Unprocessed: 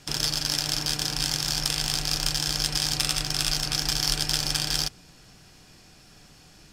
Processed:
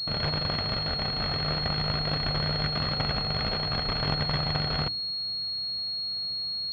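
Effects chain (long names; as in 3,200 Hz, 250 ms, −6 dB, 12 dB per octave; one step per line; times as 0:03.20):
lower of the sound and its delayed copy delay 1.5 ms
high-pass filter 58 Hz
low-shelf EQ 490 Hz +5 dB
mains-hum notches 60/120/180/240/300 Hz
switching amplifier with a slow clock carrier 4,300 Hz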